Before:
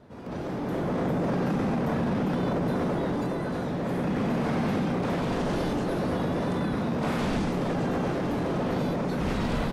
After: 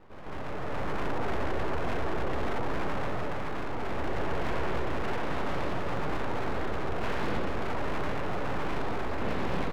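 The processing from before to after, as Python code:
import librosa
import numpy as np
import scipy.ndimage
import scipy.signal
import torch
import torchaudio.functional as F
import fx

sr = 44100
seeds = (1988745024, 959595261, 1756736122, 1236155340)

y = scipy.signal.sosfilt(scipy.signal.butter(2, 2500.0, 'lowpass', fs=sr, output='sos'), x)
y = np.abs(y)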